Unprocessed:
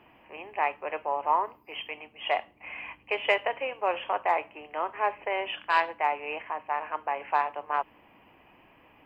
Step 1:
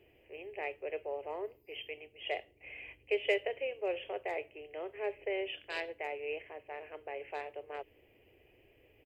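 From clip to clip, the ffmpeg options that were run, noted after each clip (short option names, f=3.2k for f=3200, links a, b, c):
-af "firequalizer=gain_entry='entry(110,0);entry(170,-16);entry(280,-11);entry(400,3);entry(1000,-27);entry(2000,-8);entry(3800,-6);entry(7400,-1)':delay=0.05:min_phase=1"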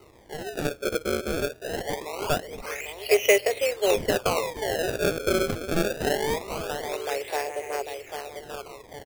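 -filter_complex "[0:a]asplit=2[a][b];[b]acrusher=bits=2:mode=log:mix=0:aa=0.000001,volume=-6dB[c];[a][c]amix=inputs=2:normalize=0,aecho=1:1:795|1590|2385|3180|3975:0.447|0.201|0.0905|0.0407|0.0183,acrusher=samples=26:mix=1:aa=0.000001:lfo=1:lforange=41.6:lforate=0.23,volume=8dB"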